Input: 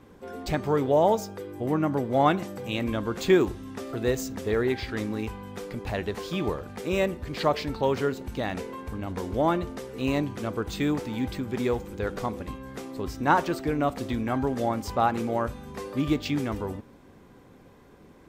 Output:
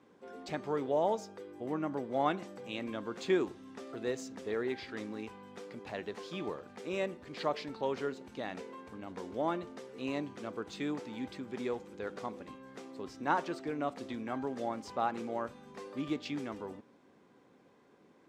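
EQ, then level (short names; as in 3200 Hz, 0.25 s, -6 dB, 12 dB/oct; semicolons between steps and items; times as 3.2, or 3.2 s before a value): BPF 200–7600 Hz; -9.0 dB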